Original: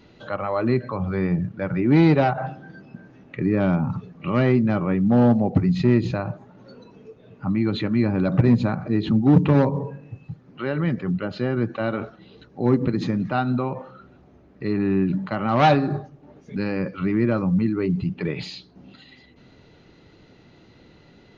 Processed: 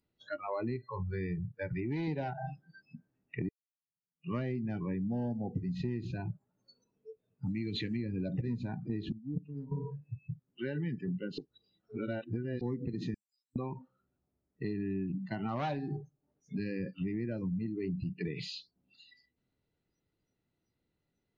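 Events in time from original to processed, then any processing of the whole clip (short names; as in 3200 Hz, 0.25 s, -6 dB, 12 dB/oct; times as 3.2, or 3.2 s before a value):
0.76–2.08 bell 220 Hz -8 dB 1.2 oct
3.49–4.35 fade in exponential
7.46–7.97 high shelf 2100 Hz +10.5 dB
9.12–9.72 gate -11 dBFS, range -17 dB
11.38–12.61 reverse
13.14–13.56 inverse Chebyshev high-pass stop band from 2000 Hz, stop band 60 dB
whole clip: spectral noise reduction 28 dB; low shelf 110 Hz +6 dB; compressor 6:1, threshold -28 dBFS; gain -5 dB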